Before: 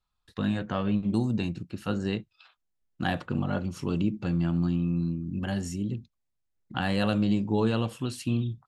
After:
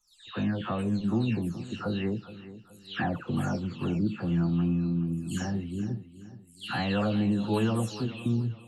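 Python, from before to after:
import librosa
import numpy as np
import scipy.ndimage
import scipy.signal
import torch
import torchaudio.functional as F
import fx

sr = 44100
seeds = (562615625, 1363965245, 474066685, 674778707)

p1 = fx.spec_delay(x, sr, highs='early', ms=356)
y = p1 + fx.echo_feedback(p1, sr, ms=422, feedback_pct=37, wet_db=-15.0, dry=0)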